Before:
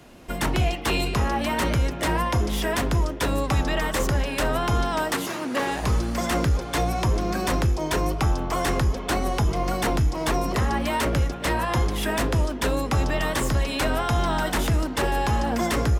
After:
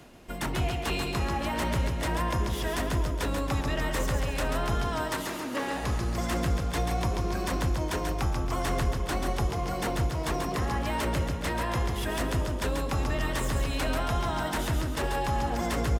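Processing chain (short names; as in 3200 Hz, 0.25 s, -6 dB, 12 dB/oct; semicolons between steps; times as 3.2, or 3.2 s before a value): reverse; upward compressor, threshold -32 dBFS; reverse; feedback echo 0.137 s, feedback 48%, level -5 dB; gain -7 dB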